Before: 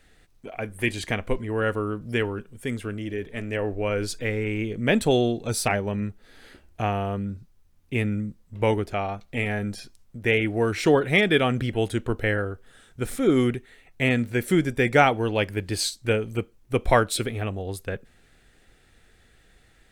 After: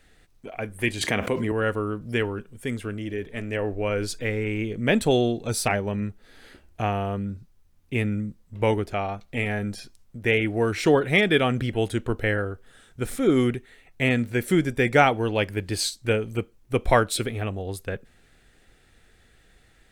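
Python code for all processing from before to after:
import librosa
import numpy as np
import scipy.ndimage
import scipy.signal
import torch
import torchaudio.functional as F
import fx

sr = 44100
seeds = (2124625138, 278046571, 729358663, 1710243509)

y = fx.chain(x, sr, fx.highpass(hz=130.0, slope=12),
    fx.env_flatten(amount_pct=70), at=(1.01, 1.52))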